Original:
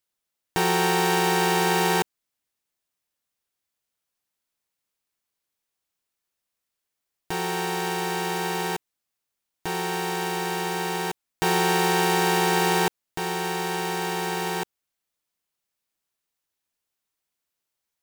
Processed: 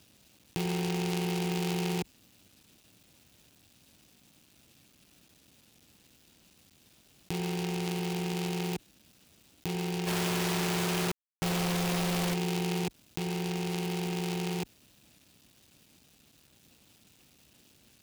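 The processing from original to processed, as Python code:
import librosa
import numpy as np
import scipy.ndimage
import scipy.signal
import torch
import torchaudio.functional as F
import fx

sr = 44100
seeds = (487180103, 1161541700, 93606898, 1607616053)

y = scipy.signal.medfilt(x, 41)
y = scipy.signal.sosfilt(scipy.signal.butter(2, 52.0, 'highpass', fs=sr, output='sos'), y)
y = fx.band_shelf(y, sr, hz=860.0, db=-11.0, octaves=2.7)
y = fx.quant_companded(y, sr, bits=2, at=(10.06, 12.33), fade=0.02)
y = fx.low_shelf(y, sr, hz=430.0, db=-6.5)
y = fx.env_flatten(y, sr, amount_pct=70)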